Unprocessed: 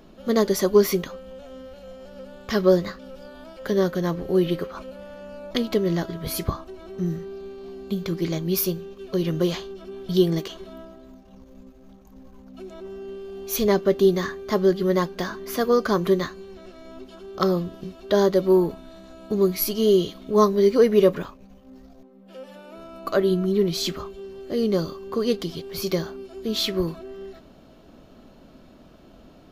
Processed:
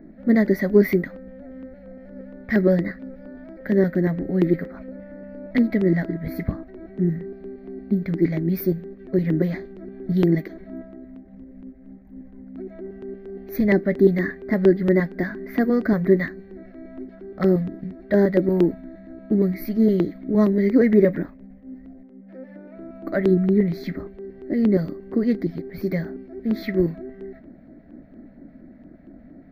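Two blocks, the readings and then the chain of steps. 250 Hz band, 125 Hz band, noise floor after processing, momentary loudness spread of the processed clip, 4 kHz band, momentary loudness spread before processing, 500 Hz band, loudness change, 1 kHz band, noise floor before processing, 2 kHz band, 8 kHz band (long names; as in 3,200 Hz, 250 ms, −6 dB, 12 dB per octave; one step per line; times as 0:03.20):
+5.0 dB, +4.5 dB, −46 dBFS, 22 LU, below −15 dB, 22 LU, −1.0 dB, +1.5 dB, −8.0 dB, −50 dBFS, +4.0 dB, below −20 dB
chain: drawn EQ curve 120 Hz 0 dB, 310 Hz +12 dB, 440 Hz −3 dB, 650 Hz +1 dB, 1,100 Hz −14 dB, 2,000 Hz +11 dB, 2,900 Hz −20 dB, 4,200 Hz −11 dB, 8,700 Hz −30 dB, 15,000 Hz −2 dB
auto-filter notch square 4.3 Hz 340–2,900 Hz
one half of a high-frequency compander decoder only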